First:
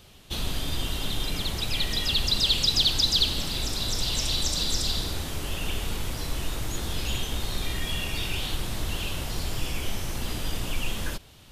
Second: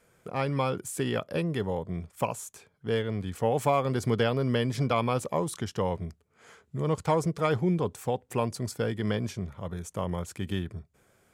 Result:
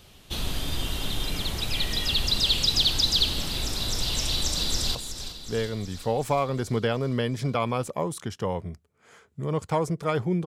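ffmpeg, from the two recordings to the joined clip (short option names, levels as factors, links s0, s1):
-filter_complex "[0:a]apad=whole_dur=10.46,atrim=end=10.46,atrim=end=4.952[s0];[1:a]atrim=start=2.308:end=7.82[s1];[s0][s1]acrossfade=d=0.004:c1=hsin:c2=hsin,asplit=2[s2][s3];[s3]afade=t=in:st=4.41:d=0.01,afade=t=out:st=4.95:d=0.01,aecho=0:1:370|740|1110|1480|1850|2220|2590|2960:0.298538|0.19405|0.126132|0.0819861|0.0532909|0.0346391|0.0225154|0.014635[s4];[s2][s4]amix=inputs=2:normalize=0"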